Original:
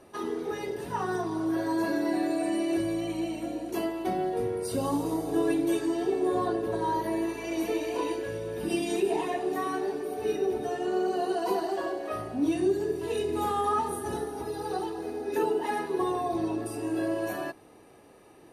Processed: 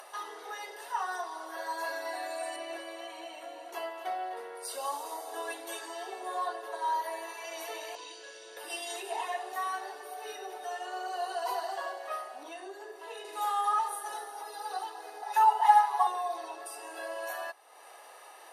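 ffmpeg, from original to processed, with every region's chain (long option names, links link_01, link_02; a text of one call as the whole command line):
ffmpeg -i in.wav -filter_complex "[0:a]asettb=1/sr,asplit=3[link_01][link_02][link_03];[link_01]atrim=end=2.564[link_04];[link_02]atrim=start=2.56:end=4.55,asetpts=PTS-STARTPTS,afade=type=in:duration=0.004:curve=qsin,afade=type=out:start_time=1.986:duration=0.004:curve=qsin,bass=frequency=250:gain=9,treble=frequency=4000:gain=-8,aecho=1:1:253:0.266,atrim=end_sample=87759[link_05];[link_03]atrim=start=4.546[link_06];[link_04][link_05]acrossfade=duration=0.004:curve1=hsin:curve2=qsin[link_07];[link_07][link_06]acrossfade=duration=0.004:curve1=qsin:curve2=hsin,asettb=1/sr,asplit=3[link_08][link_09][link_10];[link_08]atrim=end=7.954[link_11];[link_09]atrim=start=7.95:end=8.57,asetpts=PTS-STARTPTS,afade=type=in:duration=0.004:curve=qsin,afade=type=out:start_time=0.616:duration=0.004:curve=qsin,lowpass=frequency=7300:width=0.5412,lowpass=frequency=7300:width=1.3066,acrossover=split=340|3000[link_12][link_13][link_14];[link_13]acompressor=threshold=-57dB:ratio=2:attack=3.2:release=140:knee=2.83:detection=peak[link_15];[link_12][link_15][link_14]amix=inputs=3:normalize=0,asplit=2[link_16][link_17];[link_17]adelay=37,volume=-6dB[link_18];[link_16][link_18]amix=inputs=2:normalize=0,atrim=end_sample=27342[link_19];[link_10]atrim=start=8.566[link_20];[link_11][link_19]acrossfade=duration=0.004:curve1=hsin:curve2=qsin[link_21];[link_21][link_20]acrossfade=duration=0.004:curve1=qsin:curve2=hsin,asettb=1/sr,asplit=3[link_22][link_23][link_24];[link_22]atrim=end=12.434[link_25];[link_23]atrim=start=12.43:end=13.25,asetpts=PTS-STARTPTS,afade=type=in:duration=0.004:curve=qsin,afade=type=out:start_time=0.816:duration=0.004:curve=qsin,highpass=270,highshelf=frequency=2800:gain=-10.5[link_26];[link_24]atrim=start=13.246[link_27];[link_25][link_26]acrossfade=duration=0.004:curve1=hsin:curve2=qsin[link_28];[link_28][link_27]acrossfade=duration=0.004:curve1=qsin:curve2=hsin,asettb=1/sr,asplit=3[link_29][link_30][link_31];[link_29]atrim=end=15.224[link_32];[link_30]atrim=start=15.22:end=16.07,asetpts=PTS-STARTPTS,afade=type=in:duration=0.004:curve=qsin,afade=type=out:start_time=0.846:duration=0.004:curve=qsin,highpass=frequency=810:width_type=q:width=3.2,aecho=1:1:7:0.71,atrim=end_sample=37485[link_33];[link_31]atrim=start=16.066[link_34];[link_32][link_33]acrossfade=duration=0.004:curve1=hsin:curve2=qsin[link_35];[link_35][link_34]acrossfade=duration=0.004:curve1=qsin:curve2=hsin,highpass=frequency=680:width=0.5412,highpass=frequency=680:width=1.3066,bandreject=frequency=2400:width=10,acompressor=mode=upward:threshold=-41dB:ratio=2.5" out.wav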